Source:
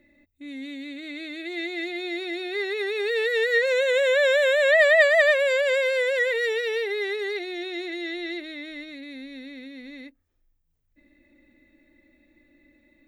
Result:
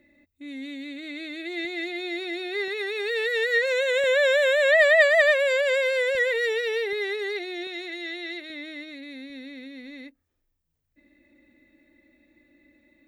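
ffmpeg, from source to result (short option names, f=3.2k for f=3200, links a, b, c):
-af "asetnsamples=n=441:p=0,asendcmd='1.65 highpass f 180;2.68 highpass f 450;4.04 highpass f 220;6.15 highpass f 77;6.93 highpass f 210;7.67 highpass f 560;8.5 highpass f 150;9.3 highpass f 68',highpass=f=53:p=1"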